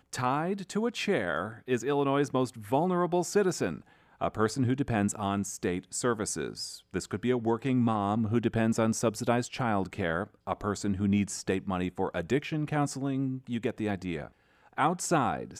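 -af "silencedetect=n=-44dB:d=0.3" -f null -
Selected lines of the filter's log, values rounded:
silence_start: 3.80
silence_end: 4.21 | silence_duration: 0.41
silence_start: 14.28
silence_end: 14.77 | silence_duration: 0.50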